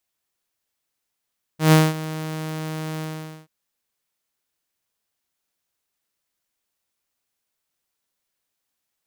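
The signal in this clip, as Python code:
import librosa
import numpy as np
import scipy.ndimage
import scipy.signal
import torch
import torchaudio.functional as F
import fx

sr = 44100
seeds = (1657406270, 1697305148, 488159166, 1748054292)

y = fx.adsr_tone(sr, wave='saw', hz=157.0, attack_ms=131.0, decay_ms=212.0, sustain_db=-17.5, held_s=1.42, release_ms=462.0, level_db=-7.0)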